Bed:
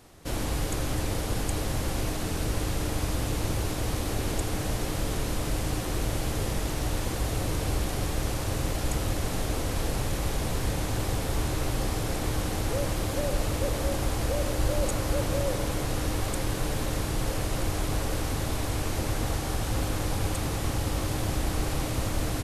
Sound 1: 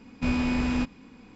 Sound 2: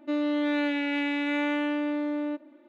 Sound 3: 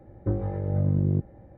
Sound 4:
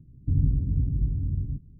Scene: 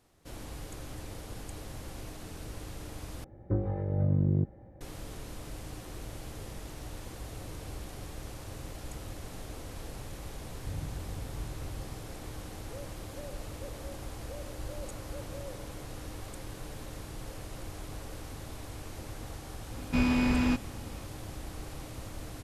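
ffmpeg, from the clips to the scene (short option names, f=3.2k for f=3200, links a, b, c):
-filter_complex "[0:a]volume=-13.5dB,asplit=2[a][b];[a]atrim=end=3.244[c];[3:a]atrim=end=1.57,asetpts=PTS-STARTPTS,volume=-3dB[d];[b]atrim=start=4.806[e];[4:a]atrim=end=1.79,asetpts=PTS-STARTPTS,volume=-16dB,afade=t=in:d=0.004:c=hsin,afade=t=out:st=1.786:d=0.004:c=hsin,adelay=10390[f];[1:a]atrim=end=1.35,asetpts=PTS-STARTPTS,volume=-0.5dB,afade=t=in:d=0.004:c=hsin,afade=t=out:st=1.346:d=0.004:c=hsin,adelay=19710[g];[c][d]acrossfade=d=0.004:c1=hsin:c2=hsin[h];[h][e]acrossfade=d=0.004:c1=hsin:c2=hsin[i];[i][f][g]amix=inputs=3:normalize=0"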